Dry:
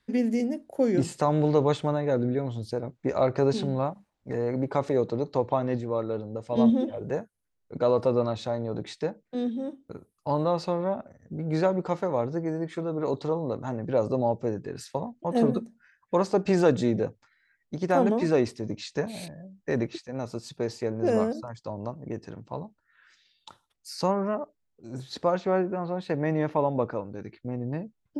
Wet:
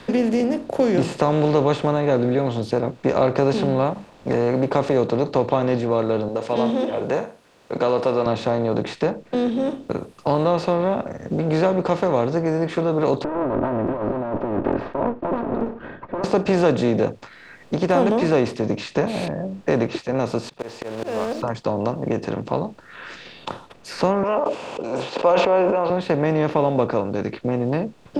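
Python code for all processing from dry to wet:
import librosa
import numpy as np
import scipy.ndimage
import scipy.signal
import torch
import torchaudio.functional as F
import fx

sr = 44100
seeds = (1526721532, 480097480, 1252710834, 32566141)

y = fx.chain(x, sr, fx.highpass(hz=640.0, slope=6),
    fx.room_flutter(wall_m=9.6, rt60_s=0.21), at=(6.28, 8.26))
y = fx.chain(y, sr, fx.lower_of_two(delay_ms=3.2),
    fx.lowpass(hz=1400.0, slope=24),
    fx.over_compress(threshold_db=-37.0, ratio=-1.0), at=(13.24, 16.24))
y = fx.chain(y, sr, fx.block_float(bits=5),
    fx.peak_eq(hz=140.0, db=-14.0, octaves=3.0),
    fx.auto_swell(attack_ms=498.0), at=(20.49, 21.42))
y = fx.chain(y, sr, fx.cabinet(low_hz=500.0, low_slope=12, high_hz=7100.0, hz=(530.0, 950.0, 1800.0, 2700.0, 4000.0, 5800.0), db=(8, 8, -9, 9, -7, -5)),
    fx.sustainer(db_per_s=49.0), at=(24.23, 25.9))
y = fx.bin_compress(y, sr, power=0.6)
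y = fx.high_shelf(y, sr, hz=7100.0, db=-8.5)
y = fx.band_squash(y, sr, depth_pct=40)
y = y * 10.0 ** (2.5 / 20.0)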